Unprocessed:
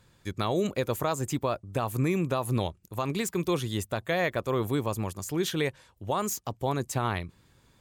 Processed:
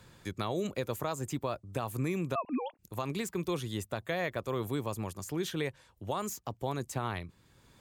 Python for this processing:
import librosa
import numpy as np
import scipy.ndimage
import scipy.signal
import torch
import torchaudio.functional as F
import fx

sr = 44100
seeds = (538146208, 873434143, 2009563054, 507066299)

y = fx.sine_speech(x, sr, at=(2.35, 2.79))
y = fx.band_squash(y, sr, depth_pct=40)
y = F.gain(torch.from_numpy(y), -6.0).numpy()